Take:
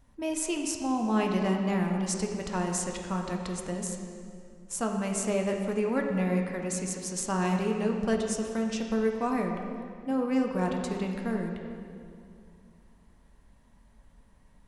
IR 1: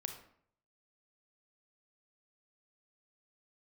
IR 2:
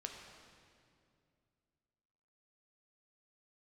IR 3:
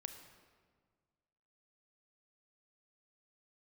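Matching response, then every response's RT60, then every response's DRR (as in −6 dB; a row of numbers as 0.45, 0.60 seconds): 2; 0.60, 2.4, 1.7 seconds; 5.0, 1.5, 7.0 decibels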